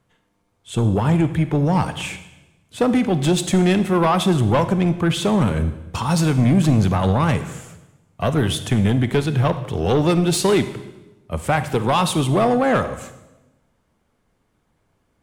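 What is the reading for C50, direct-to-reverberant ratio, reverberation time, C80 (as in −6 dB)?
12.0 dB, 11.0 dB, 1.0 s, 14.0 dB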